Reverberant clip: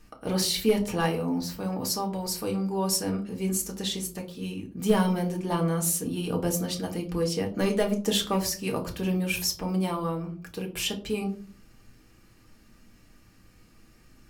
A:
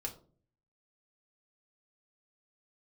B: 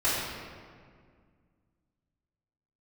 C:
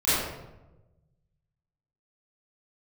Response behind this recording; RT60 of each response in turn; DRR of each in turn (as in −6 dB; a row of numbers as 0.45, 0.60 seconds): A; 0.45, 2.0, 1.1 seconds; 0.5, −13.5, −16.0 decibels